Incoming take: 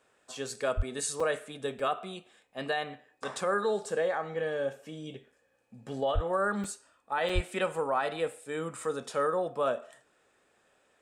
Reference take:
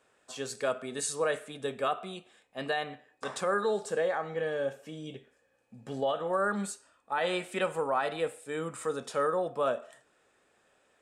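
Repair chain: 0.76–0.88 s: high-pass 140 Hz 24 dB/octave; 6.14–6.26 s: high-pass 140 Hz 24 dB/octave; 7.34–7.46 s: high-pass 140 Hz 24 dB/octave; interpolate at 1.20/1.79/5.32/6.64/7.29 s, 4.2 ms

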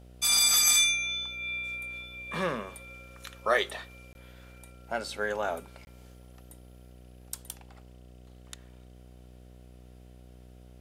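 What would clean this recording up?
de-hum 61.8 Hz, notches 12; interpolate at 4.13/5.85 s, 21 ms

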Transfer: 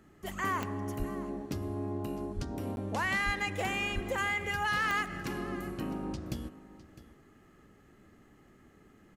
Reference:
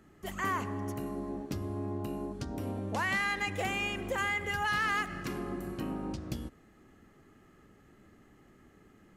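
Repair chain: de-click; de-plosive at 0.98/2.35/3.25/3.94 s; interpolate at 2.76 s, 11 ms; inverse comb 656 ms -17 dB

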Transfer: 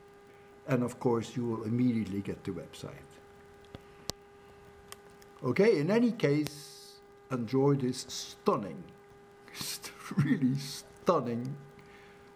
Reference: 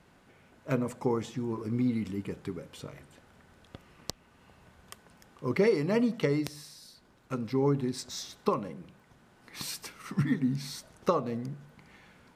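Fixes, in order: de-click; de-hum 403.1 Hz, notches 5

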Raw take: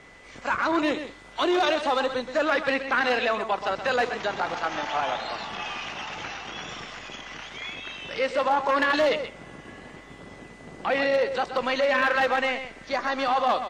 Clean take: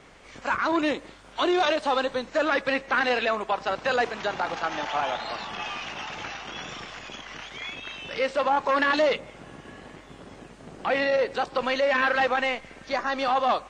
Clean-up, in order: clip repair -16 dBFS; band-stop 2 kHz, Q 30; inverse comb 127 ms -10 dB

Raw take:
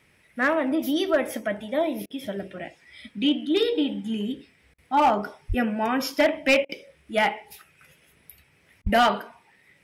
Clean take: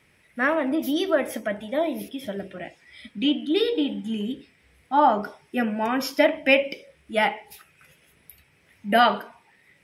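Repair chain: clip repair -13.5 dBFS; 5.48–5.60 s: high-pass 140 Hz 24 dB/octave; 8.83–8.95 s: high-pass 140 Hz 24 dB/octave; interpolate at 2.06/4.74/6.65/8.82 s, 41 ms

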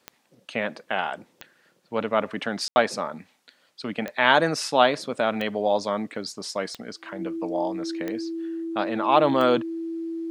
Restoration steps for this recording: de-click; band-stop 330 Hz, Q 30; room tone fill 2.68–2.76 s

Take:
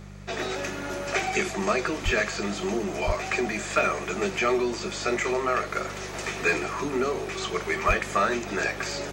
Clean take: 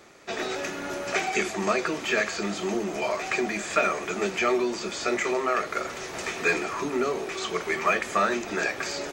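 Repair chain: clip repair -12 dBFS; de-hum 49.6 Hz, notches 4; de-plosive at 2.04/3.06/7.87 s

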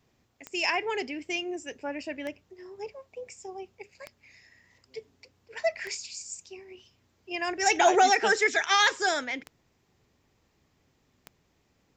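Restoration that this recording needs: clip repair -12 dBFS; de-click

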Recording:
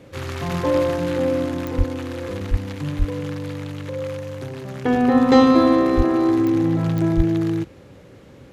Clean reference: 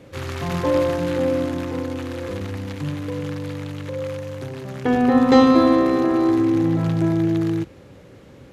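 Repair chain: de-click; de-plosive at 1.77/2.50/2.98/5.96/7.16 s

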